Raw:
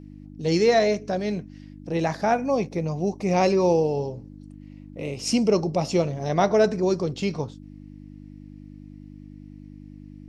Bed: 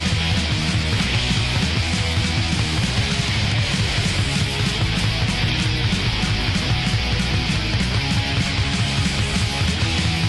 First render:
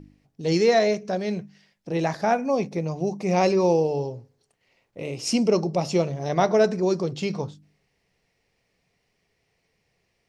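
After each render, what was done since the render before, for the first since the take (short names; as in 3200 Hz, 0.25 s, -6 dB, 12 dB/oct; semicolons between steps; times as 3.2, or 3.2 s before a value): de-hum 50 Hz, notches 6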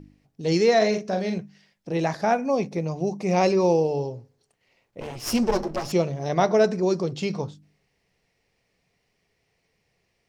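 0.77–1.38 doubler 42 ms -6 dB; 5–5.92 minimum comb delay 8.6 ms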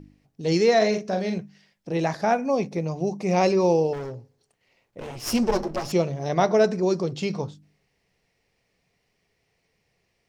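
3.93–5.18 hard clip -30 dBFS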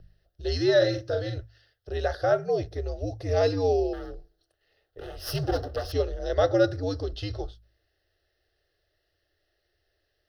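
fixed phaser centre 1600 Hz, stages 8; frequency shift -91 Hz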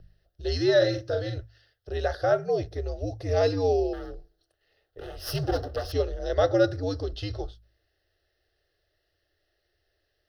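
nothing audible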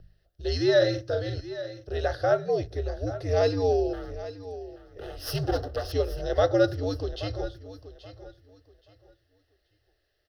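feedback echo 0.828 s, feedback 24%, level -14.5 dB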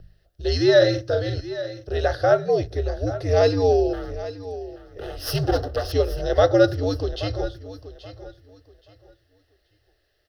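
gain +5.5 dB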